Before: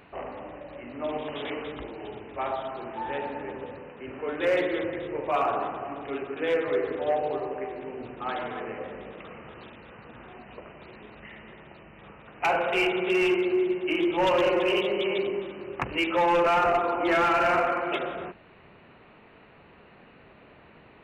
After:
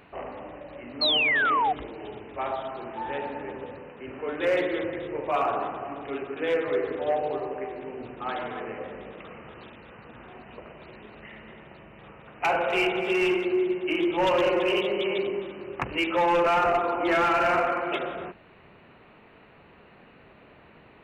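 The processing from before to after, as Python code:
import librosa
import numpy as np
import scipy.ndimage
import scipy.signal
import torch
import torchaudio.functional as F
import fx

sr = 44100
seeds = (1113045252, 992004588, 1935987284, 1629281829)

y = fx.spec_paint(x, sr, seeds[0], shape='fall', start_s=1.01, length_s=0.72, low_hz=710.0, high_hz=4400.0, level_db=-23.0)
y = fx.echo_alternate(y, sr, ms=127, hz=1000.0, feedback_pct=61, wet_db=-9.5, at=(10.27, 13.44), fade=0.02)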